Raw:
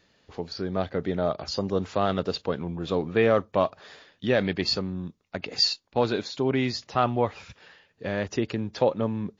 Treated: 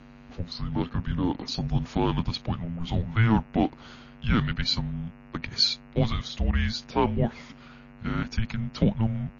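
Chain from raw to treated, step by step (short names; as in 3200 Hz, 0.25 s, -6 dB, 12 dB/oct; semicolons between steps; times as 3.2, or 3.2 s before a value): buzz 100 Hz, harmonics 32, -49 dBFS -5 dB/oct; frequency shift -340 Hz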